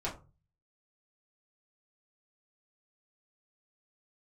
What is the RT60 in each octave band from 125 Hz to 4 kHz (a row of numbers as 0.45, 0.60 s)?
0.65, 0.40, 0.35, 0.30, 0.20, 0.15 s